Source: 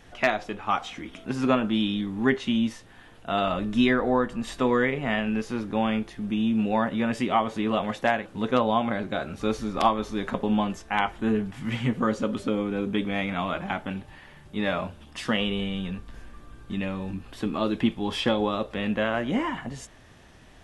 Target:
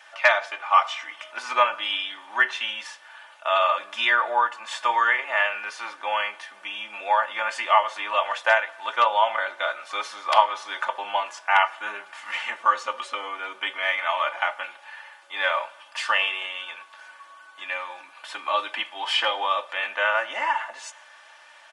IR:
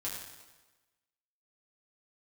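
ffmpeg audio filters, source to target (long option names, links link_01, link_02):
-filter_complex "[0:a]highpass=frequency=840:width=0.5412,highpass=frequency=840:width=1.3066,highshelf=frequency=4200:gain=-7.5,aecho=1:1:3.2:0.73,asetrate=41895,aresample=44100,asplit=2[link_01][link_02];[1:a]atrim=start_sample=2205[link_03];[link_02][link_03]afir=irnorm=-1:irlink=0,volume=-20dB[link_04];[link_01][link_04]amix=inputs=2:normalize=0,volume=7dB"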